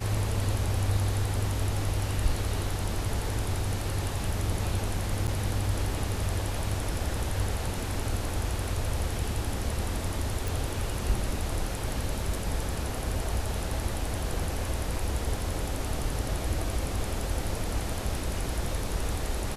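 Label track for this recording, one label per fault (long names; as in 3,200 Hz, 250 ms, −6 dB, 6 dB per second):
5.270000	5.280000	drop-out 8.5 ms
10.480000	10.480000	click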